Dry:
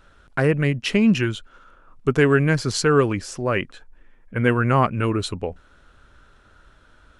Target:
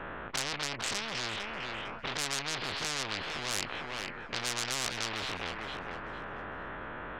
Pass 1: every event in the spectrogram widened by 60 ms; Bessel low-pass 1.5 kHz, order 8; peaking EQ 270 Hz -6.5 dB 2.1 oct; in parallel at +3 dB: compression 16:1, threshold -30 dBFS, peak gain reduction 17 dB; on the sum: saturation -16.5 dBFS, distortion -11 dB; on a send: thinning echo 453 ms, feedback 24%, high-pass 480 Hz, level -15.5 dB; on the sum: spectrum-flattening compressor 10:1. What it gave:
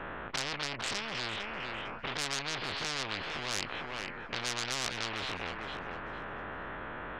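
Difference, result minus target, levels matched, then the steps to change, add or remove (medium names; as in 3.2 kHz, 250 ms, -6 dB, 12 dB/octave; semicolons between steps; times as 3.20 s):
compression: peak gain reduction +9 dB
change: compression 16:1, threshold -20.5 dBFS, peak gain reduction 8 dB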